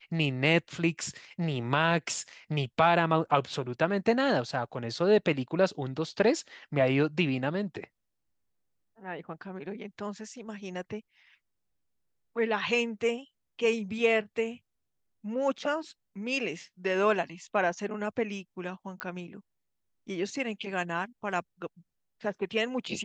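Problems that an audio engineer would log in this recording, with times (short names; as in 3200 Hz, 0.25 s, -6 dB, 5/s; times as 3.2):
19 pop -17 dBFS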